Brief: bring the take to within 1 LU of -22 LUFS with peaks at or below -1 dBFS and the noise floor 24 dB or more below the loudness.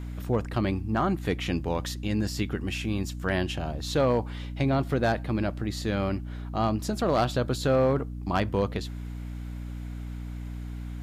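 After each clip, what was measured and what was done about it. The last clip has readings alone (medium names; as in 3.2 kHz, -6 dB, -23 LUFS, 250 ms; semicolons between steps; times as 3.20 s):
clipped samples 0.4%; clipping level -16.5 dBFS; hum 60 Hz; highest harmonic 300 Hz; hum level -33 dBFS; loudness -29.0 LUFS; peak level -16.5 dBFS; loudness target -22.0 LUFS
-> clip repair -16.5 dBFS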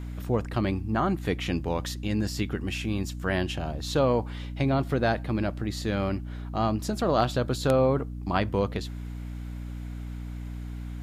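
clipped samples 0.0%; hum 60 Hz; highest harmonic 300 Hz; hum level -33 dBFS
-> de-hum 60 Hz, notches 5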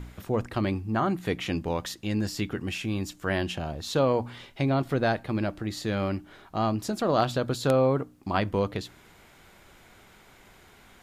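hum not found; loudness -28.5 LUFS; peak level -8.0 dBFS; loudness target -22.0 LUFS
-> trim +6.5 dB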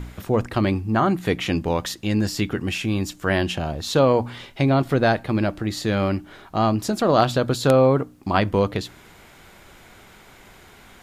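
loudness -22.0 LUFS; peak level -1.5 dBFS; noise floor -49 dBFS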